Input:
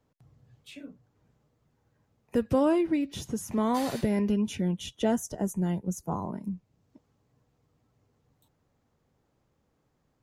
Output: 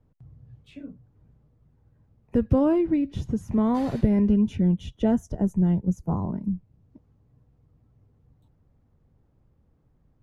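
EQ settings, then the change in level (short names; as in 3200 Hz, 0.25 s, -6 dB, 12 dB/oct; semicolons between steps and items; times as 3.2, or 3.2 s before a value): RIAA curve playback; -1.5 dB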